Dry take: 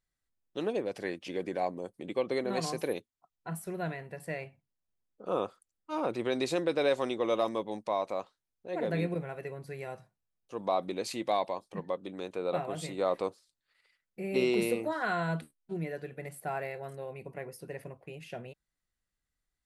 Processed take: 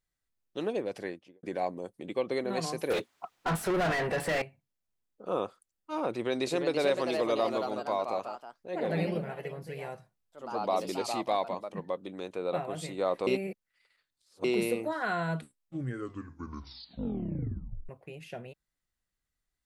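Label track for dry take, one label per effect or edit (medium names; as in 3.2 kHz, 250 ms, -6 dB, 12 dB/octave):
0.950000	1.430000	studio fade out
2.900000	4.420000	overdrive pedal drive 36 dB, tone 1.9 kHz, clips at -20.5 dBFS
6.100000	12.010000	ever faster or slower copies 368 ms, each echo +2 st, echoes 2, each echo -6 dB
13.270000	14.440000	reverse
15.340000	15.340000	tape stop 2.55 s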